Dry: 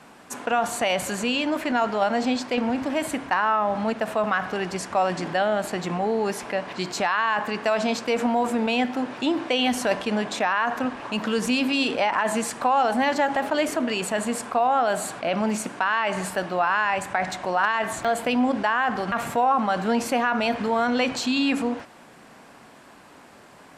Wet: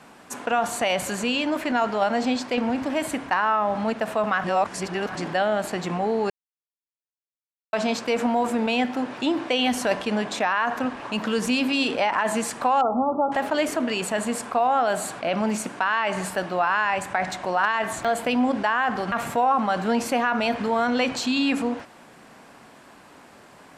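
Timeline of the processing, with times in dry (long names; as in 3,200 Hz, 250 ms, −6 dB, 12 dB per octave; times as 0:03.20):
0:04.44–0:05.15: reverse
0:06.30–0:07.73: silence
0:12.81–0:13.32: linear-phase brick-wall low-pass 1,400 Hz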